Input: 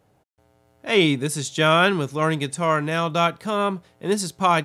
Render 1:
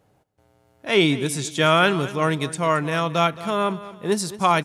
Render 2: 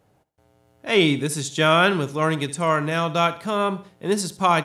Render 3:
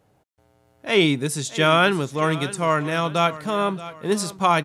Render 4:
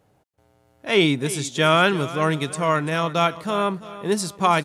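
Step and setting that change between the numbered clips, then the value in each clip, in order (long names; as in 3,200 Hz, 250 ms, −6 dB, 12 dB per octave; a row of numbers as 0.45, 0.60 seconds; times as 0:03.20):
repeating echo, delay time: 221, 67, 627, 337 milliseconds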